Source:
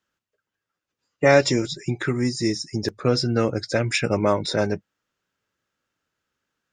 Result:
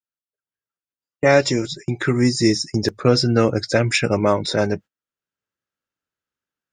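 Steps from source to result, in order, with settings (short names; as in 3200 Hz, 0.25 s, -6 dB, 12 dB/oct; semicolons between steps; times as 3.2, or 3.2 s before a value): gate -37 dBFS, range -21 dB; AGC gain up to 12.5 dB; gain -2 dB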